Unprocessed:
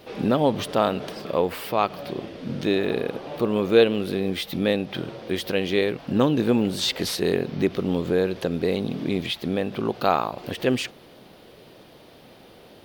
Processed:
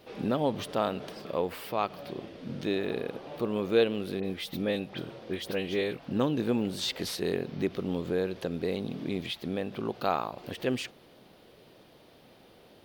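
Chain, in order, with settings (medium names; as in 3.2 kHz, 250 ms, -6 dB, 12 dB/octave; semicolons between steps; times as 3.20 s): 4.20–6.13 s: phase dispersion highs, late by 43 ms, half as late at 2.7 kHz; trim -7.5 dB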